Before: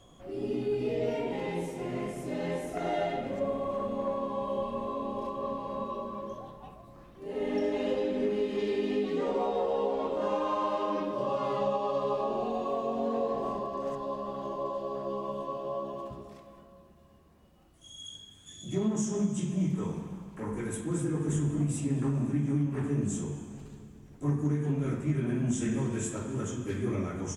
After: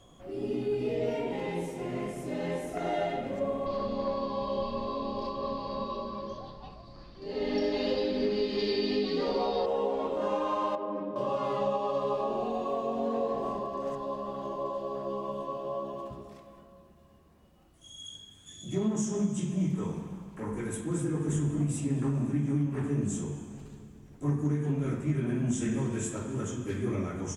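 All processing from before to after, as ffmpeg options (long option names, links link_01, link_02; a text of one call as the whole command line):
ffmpeg -i in.wav -filter_complex "[0:a]asettb=1/sr,asplit=3[link_01][link_02][link_03];[link_01]atrim=end=3.664[link_04];[link_02]atrim=start=3.66:end=9.66,asetpts=PTS-STARTPTS,afade=type=in:duration=0.004:curve=qsin,afade=type=out:start_time=5.996:duration=0.004:curve=qsin,lowpass=frequency=4600:width_type=q:width=14,lowshelf=frequency=64:gain=10[link_05];[link_03]atrim=start=9.656[link_06];[link_04][link_05]acrossfade=duration=0.004:curve1=hsin:curve2=qsin[link_07];[link_07][link_06]acrossfade=duration=0.004:curve1=qsin:curve2=hsin,asettb=1/sr,asplit=3[link_08][link_09][link_10];[link_08]atrim=end=10.754[link_11];[link_09]atrim=start=10.75:end=11.16,asetpts=PTS-STARTPTS,afade=type=in:duration=0.004:curve=qsin,afade=type=out:start_time=0.406:duration=0.004:curve=qsin,bandpass=frequency=300:width_type=q:width=0.54,equalizer=frequency=350:width=4.1:gain=-7[link_12];[link_10]atrim=start=11.156[link_13];[link_11][link_12]acrossfade=duration=0.004:curve1=hsin:curve2=qsin[link_14];[link_14][link_13]acrossfade=duration=0.004:curve1=qsin:curve2=hsin" out.wav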